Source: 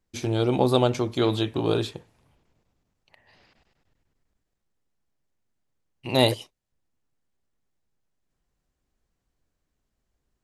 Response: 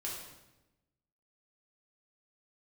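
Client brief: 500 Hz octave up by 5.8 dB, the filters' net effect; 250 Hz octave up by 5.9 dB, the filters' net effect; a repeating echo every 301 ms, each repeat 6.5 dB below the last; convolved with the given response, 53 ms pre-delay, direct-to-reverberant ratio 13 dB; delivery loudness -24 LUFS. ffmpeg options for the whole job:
-filter_complex "[0:a]equalizer=f=250:t=o:g=5.5,equalizer=f=500:t=o:g=5.5,aecho=1:1:301|602|903|1204|1505|1806:0.473|0.222|0.105|0.0491|0.0231|0.0109,asplit=2[s0][s1];[1:a]atrim=start_sample=2205,adelay=53[s2];[s1][s2]afir=irnorm=-1:irlink=0,volume=0.211[s3];[s0][s3]amix=inputs=2:normalize=0,volume=0.562"

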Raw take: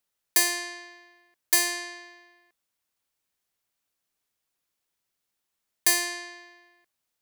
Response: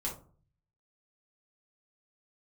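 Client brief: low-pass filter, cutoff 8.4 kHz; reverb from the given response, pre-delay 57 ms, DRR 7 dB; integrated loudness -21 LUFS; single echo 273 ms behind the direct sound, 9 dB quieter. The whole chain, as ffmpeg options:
-filter_complex "[0:a]lowpass=8400,aecho=1:1:273:0.355,asplit=2[s0][s1];[1:a]atrim=start_sample=2205,adelay=57[s2];[s1][s2]afir=irnorm=-1:irlink=0,volume=0.355[s3];[s0][s3]amix=inputs=2:normalize=0,volume=2.11"

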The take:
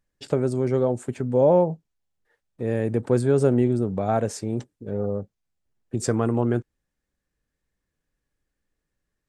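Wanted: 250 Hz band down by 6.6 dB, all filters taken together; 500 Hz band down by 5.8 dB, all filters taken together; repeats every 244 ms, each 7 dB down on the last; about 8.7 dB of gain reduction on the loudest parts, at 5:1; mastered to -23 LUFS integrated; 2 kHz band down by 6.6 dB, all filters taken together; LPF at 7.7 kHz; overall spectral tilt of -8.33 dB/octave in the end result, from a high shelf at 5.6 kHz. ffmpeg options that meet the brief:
-af "lowpass=7700,equalizer=f=250:t=o:g=-7,equalizer=f=500:t=o:g=-4.5,equalizer=f=2000:t=o:g=-8,highshelf=f=5600:g=-8,acompressor=threshold=0.0355:ratio=5,aecho=1:1:244|488|732|976|1220:0.447|0.201|0.0905|0.0407|0.0183,volume=3.76"

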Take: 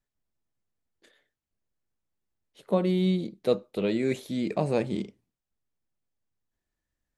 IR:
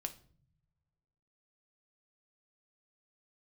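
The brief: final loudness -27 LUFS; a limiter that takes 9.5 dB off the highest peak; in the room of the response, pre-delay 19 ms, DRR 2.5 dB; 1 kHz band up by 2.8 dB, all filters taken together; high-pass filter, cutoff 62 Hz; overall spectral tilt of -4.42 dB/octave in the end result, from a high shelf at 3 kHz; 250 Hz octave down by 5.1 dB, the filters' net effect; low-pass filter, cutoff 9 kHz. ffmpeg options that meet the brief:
-filter_complex "[0:a]highpass=62,lowpass=9000,equalizer=f=250:t=o:g=-8,equalizer=f=1000:t=o:g=4,highshelf=f=3000:g=5,alimiter=limit=0.0841:level=0:latency=1,asplit=2[s0][s1];[1:a]atrim=start_sample=2205,adelay=19[s2];[s1][s2]afir=irnorm=-1:irlink=0,volume=0.891[s3];[s0][s3]amix=inputs=2:normalize=0,volume=2"

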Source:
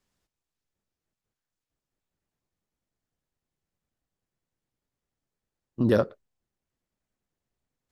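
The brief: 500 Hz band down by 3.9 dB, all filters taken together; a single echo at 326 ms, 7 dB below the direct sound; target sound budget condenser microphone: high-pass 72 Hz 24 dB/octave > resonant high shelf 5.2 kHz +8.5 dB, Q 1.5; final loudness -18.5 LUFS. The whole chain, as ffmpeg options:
-af "highpass=f=72:w=0.5412,highpass=f=72:w=1.3066,equalizer=f=500:t=o:g=-4.5,highshelf=f=5200:t=q:w=1.5:g=8.5,aecho=1:1:326:0.447,volume=3.16"

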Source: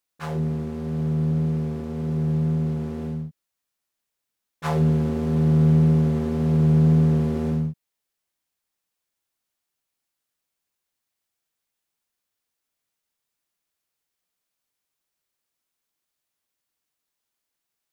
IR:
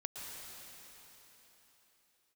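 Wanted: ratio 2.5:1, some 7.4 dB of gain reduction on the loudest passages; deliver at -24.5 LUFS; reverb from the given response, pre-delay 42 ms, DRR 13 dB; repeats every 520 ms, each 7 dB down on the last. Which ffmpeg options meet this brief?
-filter_complex "[0:a]acompressor=threshold=0.0562:ratio=2.5,aecho=1:1:520|1040|1560|2080|2600:0.447|0.201|0.0905|0.0407|0.0183,asplit=2[s0][s1];[1:a]atrim=start_sample=2205,adelay=42[s2];[s1][s2]afir=irnorm=-1:irlink=0,volume=0.237[s3];[s0][s3]amix=inputs=2:normalize=0,volume=1.58"

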